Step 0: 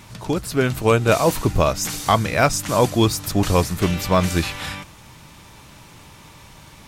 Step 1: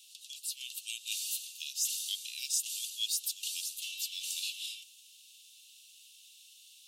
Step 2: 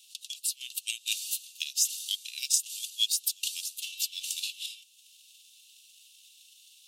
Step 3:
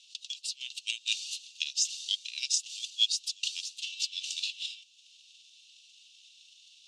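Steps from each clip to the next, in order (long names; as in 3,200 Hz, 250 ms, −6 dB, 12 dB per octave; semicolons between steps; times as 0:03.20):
Chebyshev high-pass with heavy ripple 2,700 Hz, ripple 3 dB; level −4.5 dB
transient designer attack +11 dB, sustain −5 dB
low-pass filter 6,300 Hz 24 dB per octave; level +1.5 dB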